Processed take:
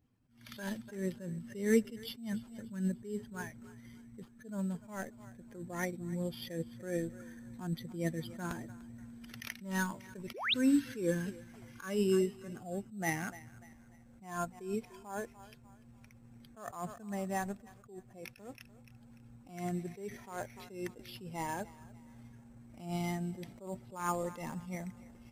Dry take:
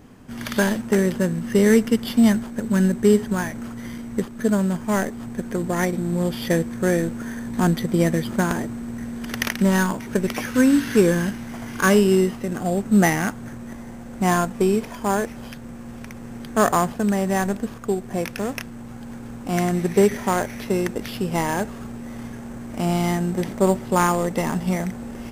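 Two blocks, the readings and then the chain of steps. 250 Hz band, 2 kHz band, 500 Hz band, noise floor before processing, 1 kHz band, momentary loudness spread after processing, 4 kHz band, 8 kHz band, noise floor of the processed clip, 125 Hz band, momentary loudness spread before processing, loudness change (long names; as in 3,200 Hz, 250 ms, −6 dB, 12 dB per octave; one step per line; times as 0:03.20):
−17.0 dB, −15.5 dB, −17.0 dB, −37 dBFS, −17.0 dB, 22 LU, −10.5 dB, −16.5 dB, −59 dBFS, −17.0 dB, 17 LU, −16.0 dB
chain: spectral dynamics exaggerated over time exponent 1.5
low-shelf EQ 69 Hz −8.5 dB
on a send: feedback echo with a high-pass in the loop 295 ms, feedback 39%, high-pass 440 Hz, level −20 dB
on the sum: sound drawn into the spectrogram rise, 0:10.34–0:10.54, 320–4,200 Hz −16 dBFS
level that may rise only so fast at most 110 dB per second
level −8.5 dB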